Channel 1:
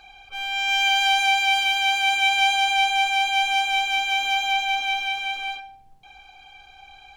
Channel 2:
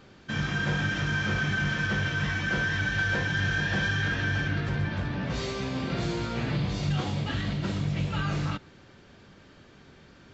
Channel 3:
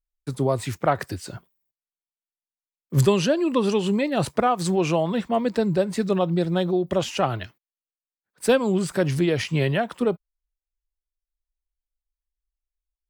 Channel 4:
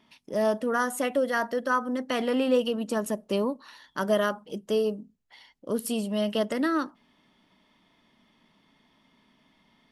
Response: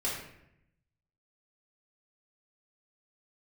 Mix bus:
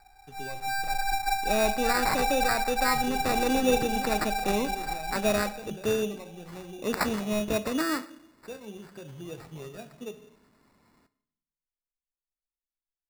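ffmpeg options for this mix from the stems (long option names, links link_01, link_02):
-filter_complex "[0:a]lowpass=frequency=5100:width_type=q:width=6.8,volume=-12dB,asplit=2[link_01][link_02];[link_02]volume=-13dB[link_03];[2:a]alimiter=limit=-13dB:level=0:latency=1:release=354,flanger=delay=4.6:depth=9:regen=54:speed=0.2:shape=sinusoidal,volume=-16.5dB,asplit=2[link_04][link_05];[link_05]volume=-12dB[link_06];[3:a]highshelf=frequency=4100:gain=11.5,adelay=1150,volume=-3dB,asplit=2[link_07][link_08];[link_08]volume=-17.5dB[link_09];[4:a]atrim=start_sample=2205[link_10];[link_03][link_06][link_09]amix=inputs=3:normalize=0[link_11];[link_11][link_10]afir=irnorm=-1:irlink=0[link_12];[link_01][link_04][link_07][link_12]amix=inputs=4:normalize=0,acrusher=samples=14:mix=1:aa=0.000001"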